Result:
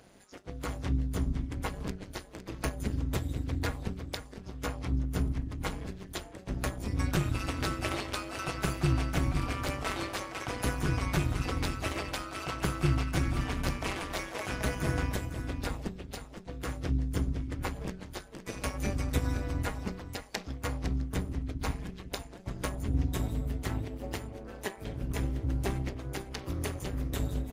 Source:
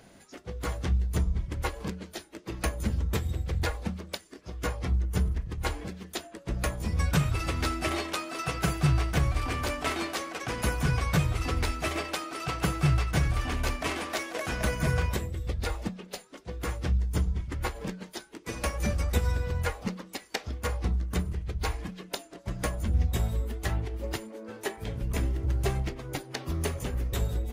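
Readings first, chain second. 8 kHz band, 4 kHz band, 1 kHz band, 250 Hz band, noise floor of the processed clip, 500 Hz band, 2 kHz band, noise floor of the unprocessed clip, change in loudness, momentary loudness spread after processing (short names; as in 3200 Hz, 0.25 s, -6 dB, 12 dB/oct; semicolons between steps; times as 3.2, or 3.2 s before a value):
-3.5 dB, -3.5 dB, -3.0 dB, -0.5 dB, -49 dBFS, -3.0 dB, -3.5 dB, -53 dBFS, -3.5 dB, 10 LU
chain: AM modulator 200 Hz, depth 75%; on a send: echo 0.507 s -10 dB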